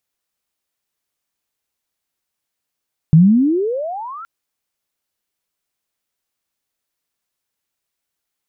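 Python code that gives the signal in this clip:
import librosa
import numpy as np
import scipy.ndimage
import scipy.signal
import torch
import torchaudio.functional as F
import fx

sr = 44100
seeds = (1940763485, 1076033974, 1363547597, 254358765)

y = fx.chirp(sr, length_s=1.12, from_hz=150.0, to_hz=1400.0, law='logarithmic', from_db=-4.0, to_db=-29.5)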